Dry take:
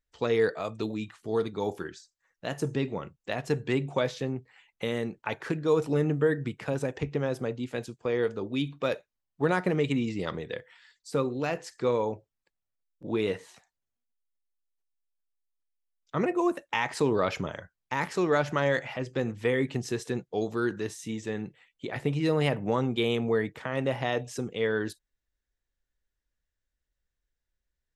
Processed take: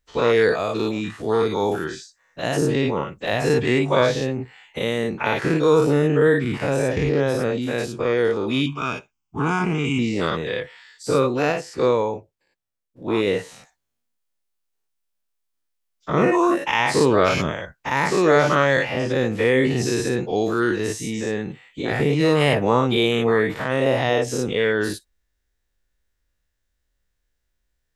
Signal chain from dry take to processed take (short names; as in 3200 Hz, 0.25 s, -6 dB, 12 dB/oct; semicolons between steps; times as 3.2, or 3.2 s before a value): spectral dilation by 0.12 s; 8.66–9.99 fixed phaser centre 2700 Hz, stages 8; 11.52–13.27 upward expander 1.5:1, over -34 dBFS; gain +4.5 dB